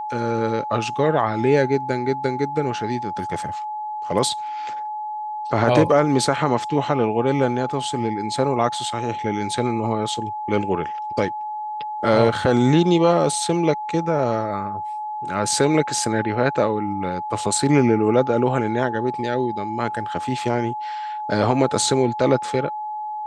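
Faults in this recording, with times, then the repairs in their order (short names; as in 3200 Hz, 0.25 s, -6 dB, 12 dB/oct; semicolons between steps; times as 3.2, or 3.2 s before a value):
tone 850 Hz -26 dBFS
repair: notch 850 Hz, Q 30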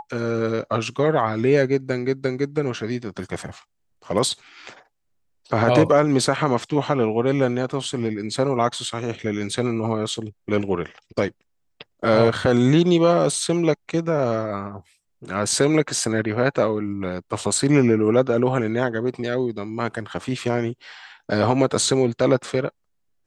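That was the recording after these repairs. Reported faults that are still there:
none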